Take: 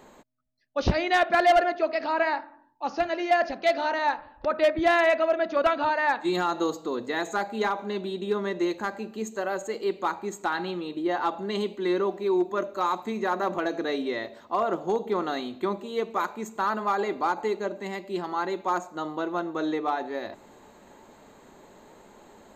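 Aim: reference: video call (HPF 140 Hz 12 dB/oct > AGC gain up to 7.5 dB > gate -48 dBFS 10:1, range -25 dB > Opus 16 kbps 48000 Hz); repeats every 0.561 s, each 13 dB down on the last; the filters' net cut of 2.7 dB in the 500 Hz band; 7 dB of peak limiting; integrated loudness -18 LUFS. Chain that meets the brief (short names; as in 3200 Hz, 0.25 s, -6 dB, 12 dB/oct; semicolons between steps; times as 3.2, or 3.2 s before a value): bell 500 Hz -4 dB; limiter -20 dBFS; HPF 140 Hz 12 dB/oct; feedback echo 0.561 s, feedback 22%, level -13 dB; AGC gain up to 7.5 dB; gate -48 dBFS 10:1, range -25 dB; gain +9 dB; Opus 16 kbps 48000 Hz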